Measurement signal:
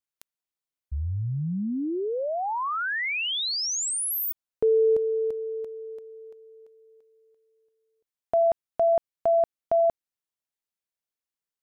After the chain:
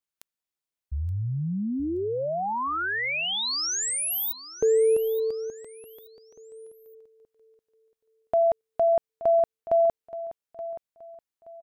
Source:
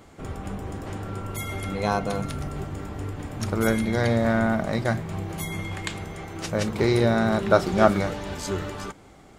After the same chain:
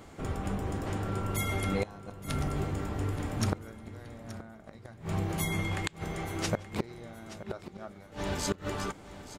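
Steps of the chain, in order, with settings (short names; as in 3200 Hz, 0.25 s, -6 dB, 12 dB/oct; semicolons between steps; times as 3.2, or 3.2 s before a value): flipped gate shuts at -16 dBFS, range -27 dB; feedback echo 0.875 s, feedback 30%, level -15 dB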